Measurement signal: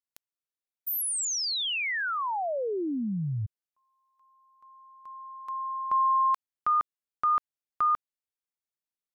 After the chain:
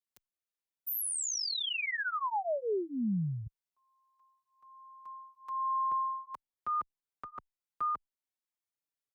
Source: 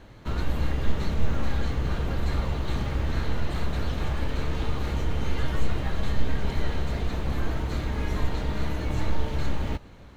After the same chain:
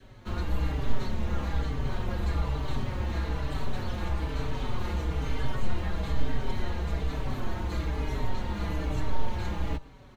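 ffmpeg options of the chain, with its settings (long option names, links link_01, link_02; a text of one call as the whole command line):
ffmpeg -i in.wav -filter_complex "[0:a]adynamicequalizer=threshold=0.00562:dfrequency=940:dqfactor=2.7:tfrequency=940:tqfactor=2.7:attack=5:release=100:ratio=0.3:range=2.5:mode=boostabove:tftype=bell,acrossover=split=110|580[link_01][link_02][link_03];[link_03]alimiter=level_in=4.5dB:limit=-24dB:level=0:latency=1:release=305,volume=-4.5dB[link_04];[link_01][link_02][link_04]amix=inputs=3:normalize=0,asplit=2[link_05][link_06];[link_06]adelay=4.8,afreqshift=-1.1[link_07];[link_05][link_07]amix=inputs=2:normalize=1" out.wav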